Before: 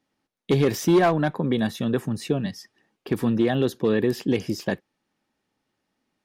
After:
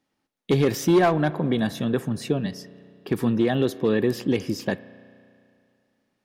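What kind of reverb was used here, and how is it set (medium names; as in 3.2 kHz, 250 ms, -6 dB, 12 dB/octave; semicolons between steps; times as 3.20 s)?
spring tank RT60 2.4 s, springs 33 ms, chirp 40 ms, DRR 16.5 dB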